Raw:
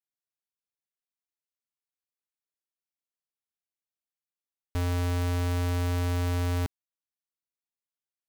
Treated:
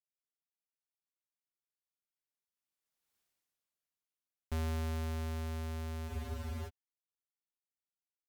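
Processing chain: Doppler pass-by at 3.18 s, 35 m/s, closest 5.2 m; spectral freeze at 6.10 s, 0.58 s; trim +12 dB

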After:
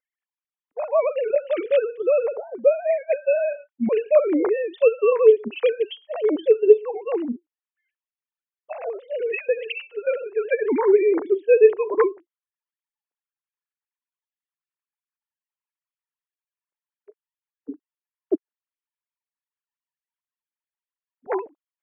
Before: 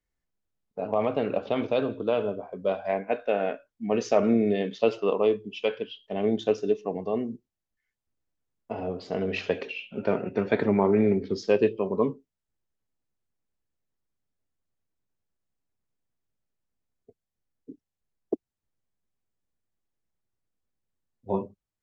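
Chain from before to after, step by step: formants replaced by sine waves; trim +6 dB

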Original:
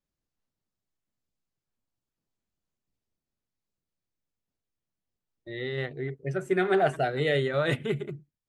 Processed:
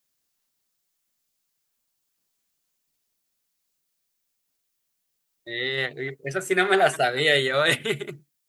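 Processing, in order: tilt EQ +3.5 dB/octave; trim +6.5 dB

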